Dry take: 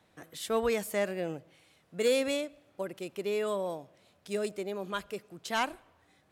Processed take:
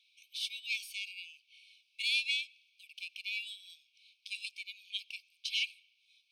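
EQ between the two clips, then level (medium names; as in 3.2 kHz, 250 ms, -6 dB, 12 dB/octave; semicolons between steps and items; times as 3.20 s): Savitzky-Golay filter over 15 samples; brick-wall FIR high-pass 2.2 kHz; +6.5 dB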